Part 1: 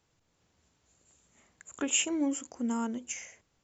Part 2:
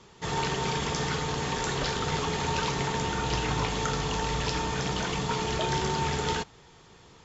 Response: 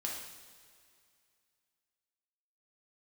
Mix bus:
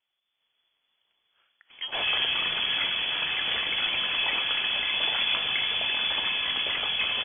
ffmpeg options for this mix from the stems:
-filter_complex "[0:a]volume=-8.5dB,asplit=2[link_01][link_02];[link_02]volume=-14.5dB[link_03];[1:a]adelay=1700,volume=-3dB[link_04];[2:a]atrim=start_sample=2205[link_05];[link_03][link_05]afir=irnorm=-1:irlink=0[link_06];[link_01][link_04][link_06]amix=inputs=3:normalize=0,dynaudnorm=framelen=110:gausssize=7:maxgain=5dB,lowpass=frequency=3000:width_type=q:width=0.5098,lowpass=frequency=3000:width_type=q:width=0.6013,lowpass=frequency=3000:width_type=q:width=0.9,lowpass=frequency=3000:width_type=q:width=2.563,afreqshift=-3500"

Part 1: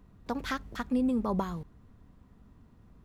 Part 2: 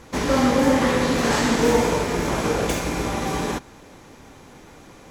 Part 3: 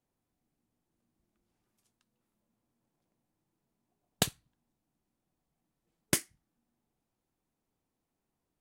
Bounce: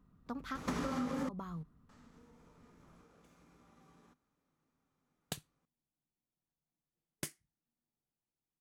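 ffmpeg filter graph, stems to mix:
ffmpeg -i stem1.wav -i stem2.wav -i stem3.wav -filter_complex "[0:a]volume=-12.5dB,asplit=2[link_01][link_02];[1:a]acompressor=threshold=-23dB:ratio=6,adelay=550,volume=-4.5dB,asplit=3[link_03][link_04][link_05];[link_03]atrim=end=1.29,asetpts=PTS-STARTPTS,afade=type=out:start_time=1.286:duration=0.004:curve=hsin[link_06];[link_04]atrim=start=1.29:end=1.89,asetpts=PTS-STARTPTS,volume=0[link_07];[link_05]atrim=start=1.89,asetpts=PTS-STARTPTS,afade=type=in:duration=0.004:curve=hsin[link_08];[link_06][link_07][link_08]concat=n=3:v=0:a=1[link_09];[2:a]equalizer=frequency=150:width=6.3:gain=5.5,adelay=1100,volume=-13.5dB[link_10];[link_02]apad=whole_len=249248[link_11];[link_09][link_11]sidechaingate=range=-36dB:threshold=-59dB:ratio=16:detection=peak[link_12];[link_01][link_12]amix=inputs=2:normalize=0,equalizer=frequency=160:width_type=o:width=0.33:gain=9,equalizer=frequency=250:width_type=o:width=0.33:gain=7,equalizer=frequency=1250:width_type=o:width=0.33:gain=10,acompressor=threshold=-33dB:ratio=16,volume=0dB[link_13];[link_10][link_13]amix=inputs=2:normalize=0" out.wav

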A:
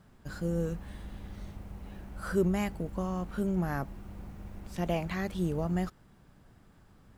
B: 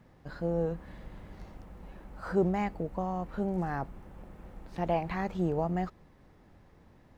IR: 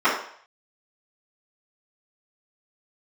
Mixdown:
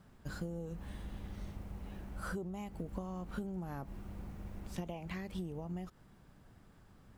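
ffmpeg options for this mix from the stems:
-filter_complex "[0:a]acompressor=threshold=-32dB:ratio=6,volume=-2dB[link_01];[1:a]highshelf=frequency=4300:gain=10,volume=-19dB,asplit=2[link_02][link_03];[link_03]apad=whole_len=316330[link_04];[link_01][link_04]sidechaincompress=threshold=-54dB:ratio=8:attack=39:release=183[link_05];[link_05][link_02]amix=inputs=2:normalize=0"

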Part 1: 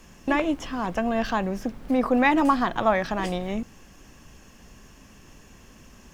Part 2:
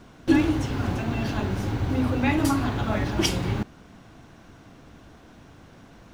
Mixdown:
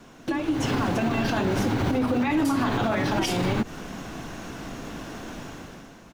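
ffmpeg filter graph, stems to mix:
ffmpeg -i stem1.wav -i stem2.wav -filter_complex "[0:a]acompressor=threshold=-26dB:ratio=6,asplit=2[link_01][link_02];[link_02]adelay=3.1,afreqshift=-2.6[link_03];[link_01][link_03]amix=inputs=2:normalize=1,volume=-3.5dB[link_04];[1:a]highpass=150,acompressor=threshold=-30dB:ratio=6,volume=-1,adelay=1,volume=1dB[link_05];[link_04][link_05]amix=inputs=2:normalize=0,dynaudnorm=framelen=110:gausssize=11:maxgain=12dB,alimiter=limit=-16dB:level=0:latency=1:release=65" out.wav

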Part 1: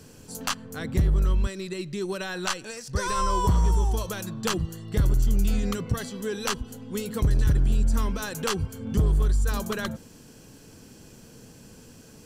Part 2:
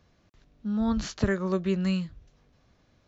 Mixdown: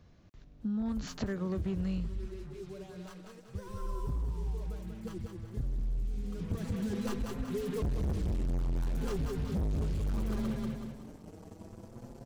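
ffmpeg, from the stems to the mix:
ffmpeg -i stem1.wav -i stem2.wav -filter_complex "[0:a]tiltshelf=frequency=720:gain=10,acrusher=bits=5:mix=0:aa=0.5,asplit=2[link_01][link_02];[link_02]adelay=5.4,afreqshift=0.61[link_03];[link_01][link_03]amix=inputs=2:normalize=1,adelay=600,volume=-4dB,afade=type=in:start_time=6.32:duration=0.39:silence=0.223872,asplit=2[link_04][link_05];[link_05]volume=-4.5dB[link_06];[1:a]lowshelf=frequency=360:gain=8.5,acompressor=threshold=-32dB:ratio=2,volume=-2dB[link_07];[link_06]aecho=0:1:188|376|564|752|940|1128:1|0.41|0.168|0.0689|0.0283|0.0116[link_08];[link_04][link_07][link_08]amix=inputs=3:normalize=0,asoftclip=type=hard:threshold=-24.5dB,acompressor=threshold=-30dB:ratio=6" out.wav

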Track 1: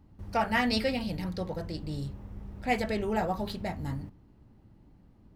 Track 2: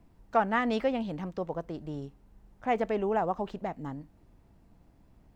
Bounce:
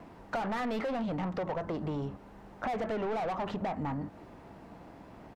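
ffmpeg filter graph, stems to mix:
ffmpeg -i stem1.wav -i stem2.wav -filter_complex "[0:a]lowpass=frequency=1700:width=0.5412,lowpass=frequency=1700:width=1.3066,volume=-12dB[link_01];[1:a]volume=-1,adelay=2.1,volume=-5.5dB,asplit=2[link_02][link_03];[link_03]apad=whole_len=235968[link_04];[link_01][link_04]sidechaingate=range=-33dB:threshold=-53dB:ratio=16:detection=peak[link_05];[link_05][link_02]amix=inputs=2:normalize=0,asplit=2[link_06][link_07];[link_07]highpass=frequency=720:poles=1,volume=34dB,asoftclip=type=tanh:threshold=-15.5dB[link_08];[link_06][link_08]amix=inputs=2:normalize=0,lowpass=frequency=1300:poles=1,volume=-6dB,acompressor=threshold=-32dB:ratio=6" out.wav

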